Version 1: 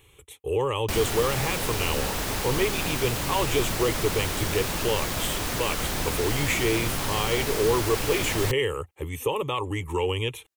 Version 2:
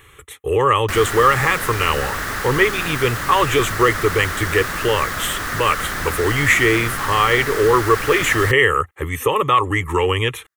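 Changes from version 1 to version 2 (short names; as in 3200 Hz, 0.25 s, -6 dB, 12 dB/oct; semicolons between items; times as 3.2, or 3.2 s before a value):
speech +7.5 dB; master: add band shelf 1500 Hz +12 dB 1 oct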